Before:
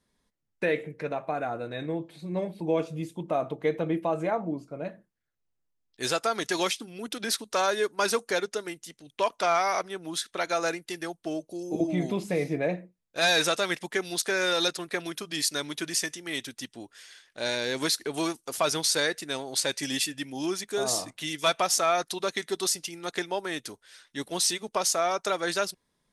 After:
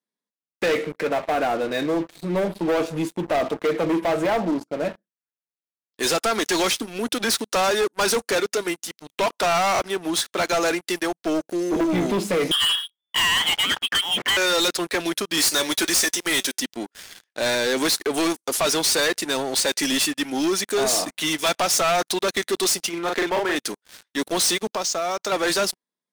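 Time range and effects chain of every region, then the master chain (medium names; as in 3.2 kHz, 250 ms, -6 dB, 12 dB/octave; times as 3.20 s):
12.51–14.37 s: frequency inversion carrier 3.5 kHz + three bands compressed up and down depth 100%
15.37–16.60 s: tone controls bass -8 dB, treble +6 dB + waveshaping leveller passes 2 + feedback comb 190 Hz, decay 0.18 s, mix 40%
22.89–23.56 s: tone controls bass -5 dB, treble -14 dB + doubling 41 ms -4 dB
24.68–25.32 s: low-pass 6.9 kHz 24 dB/octave + tone controls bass +4 dB, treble +4 dB + compression 2.5:1, threshold -37 dBFS
whole clip: high-pass 190 Hz 24 dB/octave; waveshaping leveller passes 5; trim -6 dB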